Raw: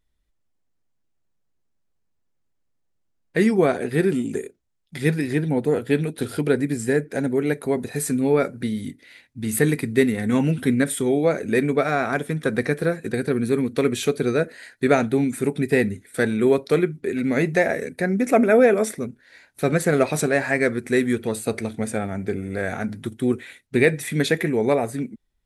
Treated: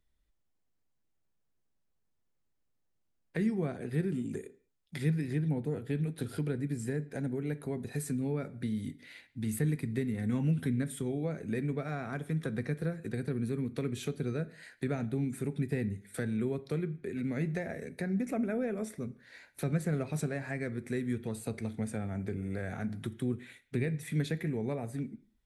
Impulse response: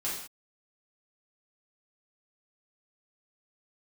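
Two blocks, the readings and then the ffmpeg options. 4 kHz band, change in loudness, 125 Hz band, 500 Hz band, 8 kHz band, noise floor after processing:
-15.5 dB, -12.5 dB, -6.0 dB, -17.0 dB, -15.0 dB, -77 dBFS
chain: -filter_complex "[0:a]acrossover=split=180[s0][s1];[s1]acompressor=threshold=0.0141:ratio=3[s2];[s0][s2]amix=inputs=2:normalize=0,asplit=2[s3][s4];[1:a]atrim=start_sample=2205,lowpass=5100[s5];[s4][s5]afir=irnorm=-1:irlink=0,volume=0.112[s6];[s3][s6]amix=inputs=2:normalize=0,volume=0.596"

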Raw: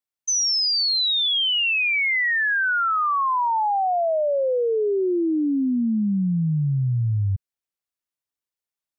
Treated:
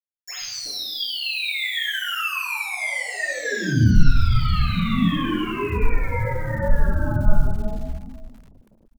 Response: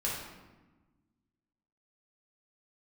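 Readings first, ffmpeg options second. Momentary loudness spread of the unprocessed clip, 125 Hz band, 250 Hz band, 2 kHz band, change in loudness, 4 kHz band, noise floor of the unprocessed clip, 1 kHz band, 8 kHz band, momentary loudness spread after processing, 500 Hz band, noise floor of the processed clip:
5 LU, +3.0 dB, -1.0 dB, -3.0 dB, -2.5 dB, -5.5 dB, under -85 dBFS, -8.0 dB, no reading, 10 LU, -7.0 dB, -56 dBFS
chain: -filter_complex "[0:a]aeval=exprs='0.126*(cos(1*acos(clip(val(0)/0.126,-1,1)))-cos(1*PI/2))+0.00631*(cos(4*acos(clip(val(0)/0.126,-1,1)))-cos(4*PI/2))+0.000891*(cos(5*acos(clip(val(0)/0.126,-1,1)))-cos(5*PI/2))+0.0447*(cos(7*acos(clip(val(0)/0.126,-1,1)))-cos(7*PI/2))+0.00251*(cos(8*acos(clip(val(0)/0.126,-1,1)))-cos(8*PI/2))':c=same,asplit=2[s0][s1];[s1]adelay=21,volume=0.355[s2];[s0][s2]amix=inputs=2:normalize=0,aeval=exprs='val(0)*sin(2*PI*740*n/s)':c=same,asubboost=boost=9.5:cutoff=150[s3];[1:a]atrim=start_sample=2205,asetrate=41454,aresample=44100[s4];[s3][s4]afir=irnorm=-1:irlink=0,alimiter=limit=0.841:level=0:latency=1:release=471,acrossover=split=4100[s5][s6];[s6]acompressor=threshold=0.0178:ratio=4:attack=1:release=60[s7];[s5][s7]amix=inputs=2:normalize=0,equalizer=f=910:t=o:w=0.94:g=-9,flanger=delay=3:depth=6.5:regen=9:speed=0.89:shape=sinusoidal,acrusher=bits=9:dc=4:mix=0:aa=0.000001,acrossover=split=150|720[s8][s9][s10];[s8]adelay=130[s11];[s9]adelay=370[s12];[s11][s12][s10]amix=inputs=3:normalize=0"

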